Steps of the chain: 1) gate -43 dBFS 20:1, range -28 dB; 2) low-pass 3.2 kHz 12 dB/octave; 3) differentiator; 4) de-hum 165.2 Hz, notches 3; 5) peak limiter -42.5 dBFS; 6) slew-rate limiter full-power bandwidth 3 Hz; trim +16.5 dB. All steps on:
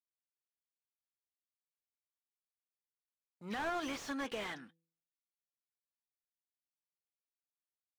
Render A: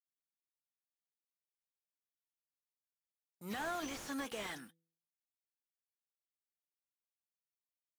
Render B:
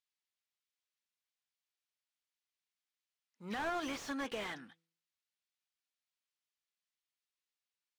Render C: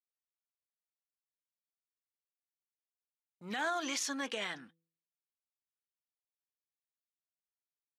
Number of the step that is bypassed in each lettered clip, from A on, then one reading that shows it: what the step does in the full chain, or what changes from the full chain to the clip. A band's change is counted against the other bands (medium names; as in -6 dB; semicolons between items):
2, 8 kHz band +5.0 dB; 1, momentary loudness spread change +4 LU; 6, distortion -2 dB